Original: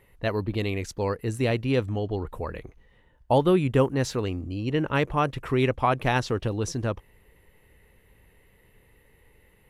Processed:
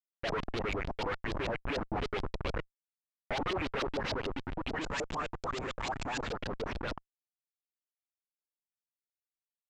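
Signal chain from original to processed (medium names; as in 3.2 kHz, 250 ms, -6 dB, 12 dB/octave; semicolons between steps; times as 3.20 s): 1.49–2.14 s: peaking EQ 670 Hz -5 dB -> +3.5 dB 2.4 oct; Chebyshev shaper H 4 -22 dB, 5 -28 dB, 6 -14 dB, 8 -27 dB, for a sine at -9 dBFS; LFO high-pass saw up 9.4 Hz 210–2600 Hz; Schmitt trigger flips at -33 dBFS; 4.81–6.31 s: resonant low-pass 7.3 kHz, resonance Q 6.5; gain riding 2 s; LFO low-pass saw up 6.8 Hz 580–4900 Hz; trim -9 dB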